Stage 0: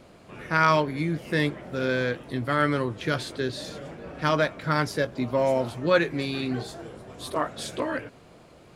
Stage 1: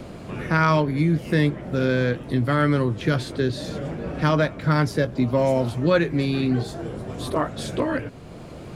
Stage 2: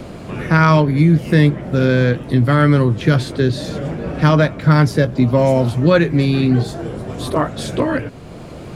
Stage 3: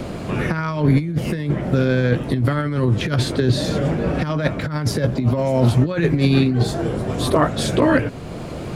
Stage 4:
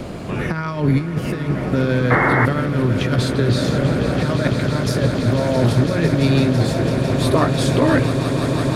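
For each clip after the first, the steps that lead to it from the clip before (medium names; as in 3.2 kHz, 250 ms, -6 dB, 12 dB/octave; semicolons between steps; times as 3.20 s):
bass shelf 310 Hz +10.5 dB; three bands compressed up and down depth 40%
dynamic bell 140 Hz, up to +4 dB, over -31 dBFS, Q 1.1; trim +5.5 dB
compressor with a negative ratio -16 dBFS, ratio -0.5
echo with a slow build-up 167 ms, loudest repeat 8, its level -12 dB; painted sound noise, 2.10–2.46 s, 250–2200 Hz -16 dBFS; trim -1 dB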